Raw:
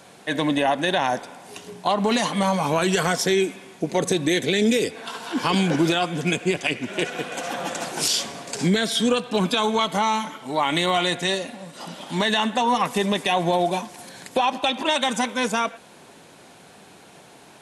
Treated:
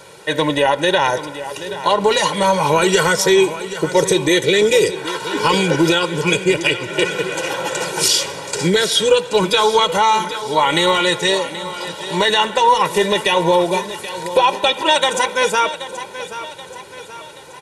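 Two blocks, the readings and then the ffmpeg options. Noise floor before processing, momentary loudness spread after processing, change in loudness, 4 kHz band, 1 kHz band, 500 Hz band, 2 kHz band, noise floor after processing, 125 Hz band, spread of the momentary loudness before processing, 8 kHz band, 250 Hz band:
−48 dBFS, 13 LU, +6.5 dB, +7.5 dB, +7.0 dB, +8.5 dB, +7.0 dB, −36 dBFS, +3.0 dB, 9 LU, +7.5 dB, +2.0 dB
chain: -filter_complex "[0:a]aecho=1:1:2.1:0.88,asplit=2[link_01][link_02];[link_02]aecho=0:1:779|1558|2337|3116|3895:0.224|0.107|0.0516|0.0248|0.0119[link_03];[link_01][link_03]amix=inputs=2:normalize=0,volume=4.5dB"

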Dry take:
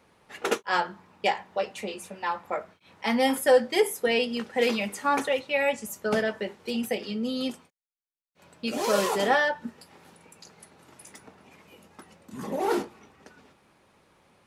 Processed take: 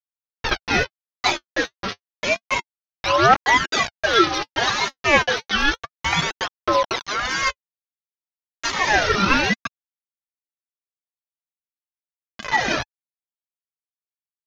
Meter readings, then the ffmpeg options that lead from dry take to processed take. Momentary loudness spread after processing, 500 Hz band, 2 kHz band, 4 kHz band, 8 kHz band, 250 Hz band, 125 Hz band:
10 LU, 0.0 dB, +10.0 dB, +10.5 dB, +7.5 dB, +2.0 dB, +12.5 dB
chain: -af "aresample=11025,acrusher=bits=4:mix=0:aa=0.000001,aresample=44100,aphaser=in_gain=1:out_gain=1:delay=3.9:decay=0.72:speed=0.3:type=triangular,aeval=exprs='val(0)*sin(2*PI*1200*n/s+1200*0.35/0.81*sin(2*PI*0.81*n/s))':channel_layout=same,volume=6dB"

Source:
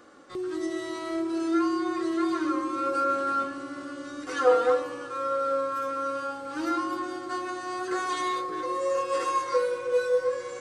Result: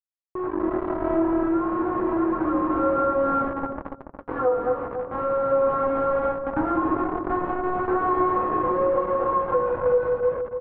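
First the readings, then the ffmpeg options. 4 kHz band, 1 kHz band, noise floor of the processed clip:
below −15 dB, +4.5 dB, −47 dBFS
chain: -filter_complex "[0:a]highpass=frequency=48:width=0.5412,highpass=frequency=48:width=1.3066,aresample=11025,acrusher=bits=4:mix=0:aa=0.000001,aresample=44100,lowpass=frequency=1200:width=0.5412,lowpass=frequency=1200:width=1.3066,dynaudnorm=framelen=260:gausssize=5:maxgain=15.5dB,flanger=delay=1.1:depth=8.2:regen=-67:speed=0.31:shape=sinusoidal,acompressor=threshold=-23dB:ratio=2.5,asplit=2[link_01][link_02];[link_02]adelay=284,lowpass=frequency=830:poles=1,volume=-4.5dB,asplit=2[link_03][link_04];[link_04]adelay=284,lowpass=frequency=830:poles=1,volume=0.17,asplit=2[link_05][link_06];[link_06]adelay=284,lowpass=frequency=830:poles=1,volume=0.17[link_07];[link_01][link_03][link_05][link_07]amix=inputs=4:normalize=0,volume=1dB"

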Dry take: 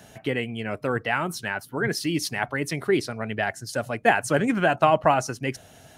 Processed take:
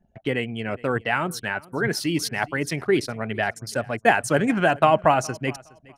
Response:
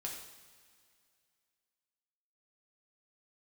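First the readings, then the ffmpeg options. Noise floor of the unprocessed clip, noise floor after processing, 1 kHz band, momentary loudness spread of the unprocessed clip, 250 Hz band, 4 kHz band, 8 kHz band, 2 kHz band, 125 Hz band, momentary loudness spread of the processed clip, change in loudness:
−51 dBFS, −56 dBFS, +1.5 dB, 10 LU, +1.5 dB, +1.5 dB, +1.5 dB, +1.5 dB, +1.5 dB, 10 LU, +1.5 dB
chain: -af "anlmdn=0.631,aecho=1:1:416|832:0.0708|0.0142,volume=1.5dB"

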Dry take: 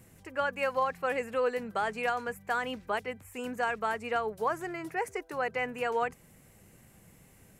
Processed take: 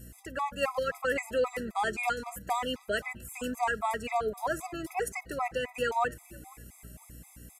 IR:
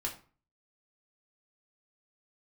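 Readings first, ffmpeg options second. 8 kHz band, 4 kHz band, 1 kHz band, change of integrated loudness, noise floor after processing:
+8.0 dB, +4.0 dB, +0.5 dB, 0.0 dB, −57 dBFS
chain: -filter_complex "[0:a]asplit=3[link_01][link_02][link_03];[link_02]adelay=494,afreqshift=-150,volume=-23dB[link_04];[link_03]adelay=988,afreqshift=-300,volume=-31.9dB[link_05];[link_01][link_04][link_05]amix=inputs=3:normalize=0,aresample=32000,aresample=44100,asplit=2[link_06][link_07];[1:a]atrim=start_sample=2205,asetrate=31752,aresample=44100[link_08];[link_07][link_08]afir=irnorm=-1:irlink=0,volume=-24dB[link_09];[link_06][link_09]amix=inputs=2:normalize=0,aeval=exprs='val(0)+0.00316*(sin(2*PI*60*n/s)+sin(2*PI*2*60*n/s)/2+sin(2*PI*3*60*n/s)/3+sin(2*PI*4*60*n/s)/4+sin(2*PI*5*60*n/s)/5)':channel_layout=same,highshelf=frequency=4200:gain=10,afftfilt=real='re*gt(sin(2*PI*3.8*pts/sr)*(1-2*mod(floor(b*sr/1024/660),2)),0)':imag='im*gt(sin(2*PI*3.8*pts/sr)*(1-2*mod(floor(b*sr/1024/660),2)),0)':win_size=1024:overlap=0.75,volume=2.5dB"

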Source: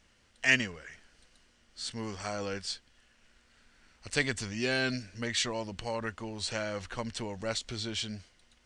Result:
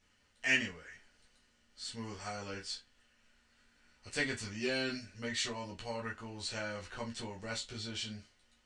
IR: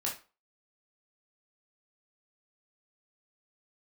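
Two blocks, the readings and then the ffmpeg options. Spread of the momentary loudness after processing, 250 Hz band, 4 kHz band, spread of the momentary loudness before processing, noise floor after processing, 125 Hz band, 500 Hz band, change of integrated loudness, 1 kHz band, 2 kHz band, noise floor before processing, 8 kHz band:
12 LU, −5.0 dB, −4.5 dB, 11 LU, −71 dBFS, −6.5 dB, −5.5 dB, −5.0 dB, −5.0 dB, −4.5 dB, −66 dBFS, −5.0 dB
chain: -filter_complex "[1:a]atrim=start_sample=2205,asetrate=70560,aresample=44100[link_01];[0:a][link_01]afir=irnorm=-1:irlink=0,volume=-4dB"

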